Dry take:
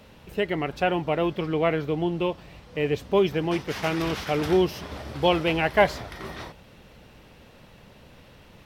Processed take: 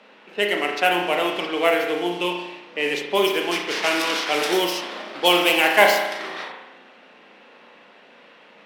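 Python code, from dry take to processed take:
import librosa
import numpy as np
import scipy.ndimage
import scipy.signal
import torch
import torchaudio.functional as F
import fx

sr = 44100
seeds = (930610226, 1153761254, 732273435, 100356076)

y = scipy.signal.medfilt(x, 5)
y = scipy.signal.sosfilt(scipy.signal.butter(6, 200.0, 'highpass', fs=sr, output='sos'), y)
y = fx.high_shelf(y, sr, hz=7500.0, db=8.5)
y = fx.rev_spring(y, sr, rt60_s=1.0, pass_ms=(34,), chirp_ms=45, drr_db=1.5)
y = fx.env_lowpass(y, sr, base_hz=2100.0, full_db=-17.5)
y = fx.tilt_eq(y, sr, slope=3.5)
y = F.gain(torch.from_numpy(y), 3.5).numpy()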